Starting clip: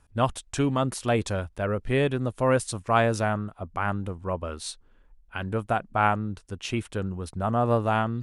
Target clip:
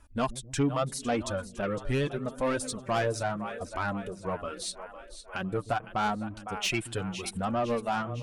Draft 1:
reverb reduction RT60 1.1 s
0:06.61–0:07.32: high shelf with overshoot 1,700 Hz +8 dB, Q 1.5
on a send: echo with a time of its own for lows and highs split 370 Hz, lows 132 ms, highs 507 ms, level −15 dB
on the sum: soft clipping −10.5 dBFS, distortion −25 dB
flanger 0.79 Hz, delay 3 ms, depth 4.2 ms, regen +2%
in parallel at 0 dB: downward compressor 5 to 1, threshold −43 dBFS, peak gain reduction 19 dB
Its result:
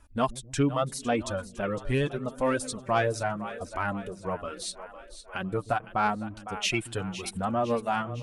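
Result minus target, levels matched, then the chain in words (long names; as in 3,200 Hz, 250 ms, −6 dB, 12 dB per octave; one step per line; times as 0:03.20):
soft clipping: distortion −12 dB
reverb reduction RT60 1.1 s
0:06.61–0:07.32: high shelf with overshoot 1,700 Hz +8 dB, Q 1.5
on a send: echo with a time of its own for lows and highs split 370 Hz, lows 132 ms, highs 507 ms, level −15 dB
on the sum: soft clipping −20 dBFS, distortion −13 dB
flanger 0.79 Hz, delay 3 ms, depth 4.2 ms, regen +2%
in parallel at 0 dB: downward compressor 5 to 1, threshold −43 dBFS, peak gain reduction 16.5 dB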